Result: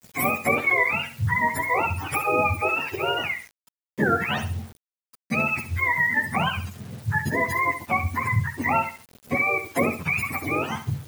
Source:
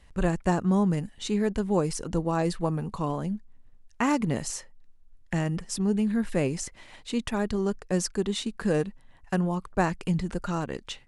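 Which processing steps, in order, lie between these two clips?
spectrum inverted on a logarithmic axis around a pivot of 640 Hz; compression 1.5:1, threshold -31 dBFS, peak gain reduction 4 dB; flutter echo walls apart 11.7 m, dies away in 0.38 s; bit crusher 9-bit; trim +8 dB

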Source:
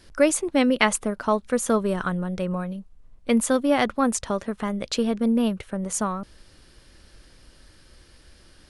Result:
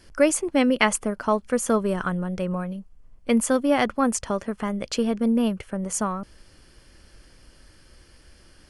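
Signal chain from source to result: band-stop 3.8 kHz, Q 5.9

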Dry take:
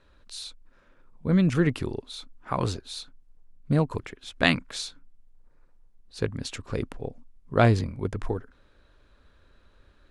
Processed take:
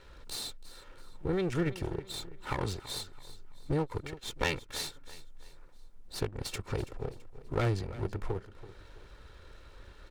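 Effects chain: comb filter that takes the minimum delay 2.2 ms; compression 2:1, threshold -49 dBFS, peak gain reduction 18 dB; on a send: feedback delay 331 ms, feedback 38%, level -16 dB; on the sum: trim +8 dB

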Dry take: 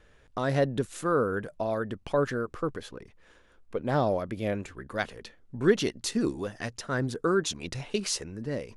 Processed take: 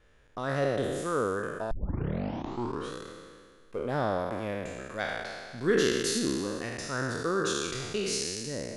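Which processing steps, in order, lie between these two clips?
spectral sustain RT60 1.89 s; 1.71 s: tape start 1.22 s; 5.58–6.19 s: treble shelf 4.9 kHz +5 dB; trim -6 dB

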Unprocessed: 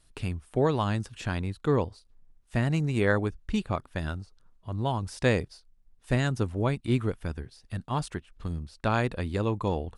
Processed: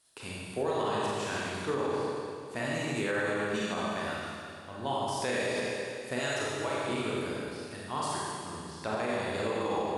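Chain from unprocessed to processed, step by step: tone controls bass -12 dB, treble +5 dB; 8.55–9.00 s: low-pass that closes with the level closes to 570 Hz, closed at -24 dBFS; on a send: flutter echo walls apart 9.1 m, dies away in 0.27 s; on the sum: Schroeder reverb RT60 2.4 s, combs from 29 ms, DRR -6 dB; in parallel at -11 dB: saturation -16.5 dBFS, distortion -17 dB; 6.19–6.88 s: on the sum: peaking EQ 210 Hz -11.5 dB 0.95 oct; peak limiter -15 dBFS, peak gain reduction 7.5 dB; high-pass 98 Hz; trim -7 dB

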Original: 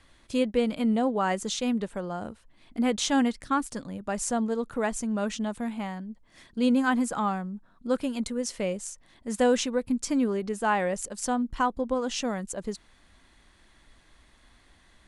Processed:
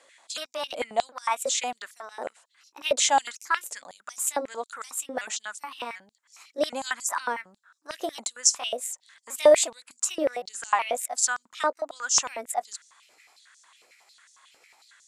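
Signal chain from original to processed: pitch shift switched off and on +3.5 st, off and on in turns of 372 ms; peaking EQ 7.3 kHz +12 dB 0.44 oct; step-sequenced high-pass 11 Hz 530–5700 Hz

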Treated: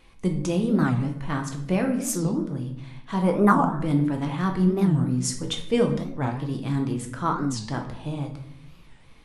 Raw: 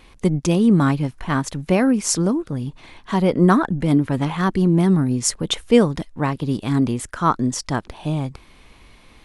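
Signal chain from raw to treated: 3.21–3.82 s: graphic EQ 1/4/8 kHz +10/-9/+9 dB; reverberation RT60 0.70 s, pre-delay 6 ms, DRR 3 dB; warped record 45 rpm, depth 250 cents; trim -8.5 dB

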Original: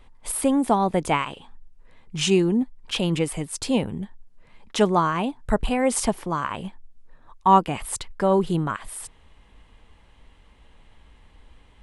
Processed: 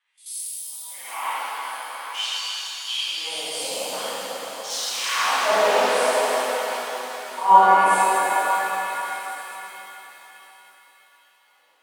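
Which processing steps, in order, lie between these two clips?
phase randomisation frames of 200 ms; bass shelf 93 Hz -9 dB; level held to a coarse grid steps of 17 dB; 3.92–5.79 s: waveshaping leveller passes 5; LFO high-pass sine 0.49 Hz 520–5600 Hz; on a send: repeats whose band climbs or falls 272 ms, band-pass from 220 Hz, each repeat 1.4 oct, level -2.5 dB; on the sum: pitch-shifted reverb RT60 3.8 s, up +7 st, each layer -8 dB, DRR -12 dB; trim -6.5 dB

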